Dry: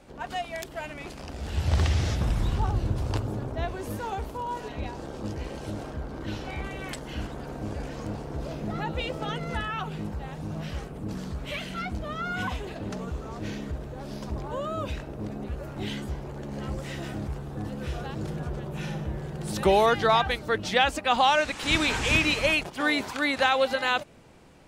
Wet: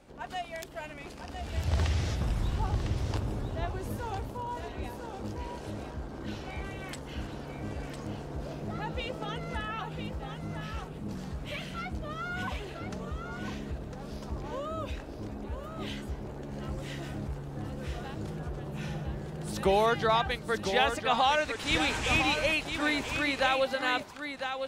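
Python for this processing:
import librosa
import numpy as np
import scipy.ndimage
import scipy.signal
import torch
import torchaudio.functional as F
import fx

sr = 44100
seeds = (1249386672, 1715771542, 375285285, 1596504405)

y = x + 10.0 ** (-7.5 / 20.0) * np.pad(x, (int(1004 * sr / 1000.0), 0))[:len(x)]
y = y * librosa.db_to_amplitude(-4.5)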